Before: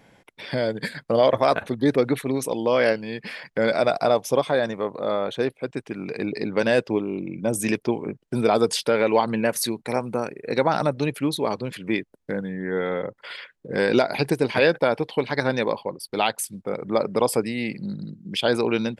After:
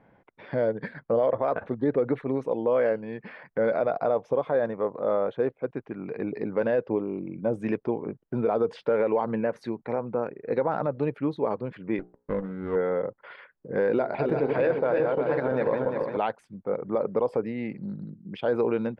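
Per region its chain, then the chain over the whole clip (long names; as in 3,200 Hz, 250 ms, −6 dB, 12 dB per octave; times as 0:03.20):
0:11.99–0:12.76: parametric band 1,200 Hz +12 dB 0.46 octaves + mains-hum notches 60/120/180/240/300/360/420/480/540 Hz + windowed peak hold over 17 samples
0:13.95–0:16.17: feedback delay that plays each chunk backwards 173 ms, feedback 68%, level −5.5 dB + mains-hum notches 60/120/180/240/300/360/420/480 Hz
whole clip: Chebyshev low-pass filter 1,300 Hz, order 2; dynamic equaliser 490 Hz, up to +6 dB, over −33 dBFS, Q 3.3; brickwall limiter −12.5 dBFS; level −3 dB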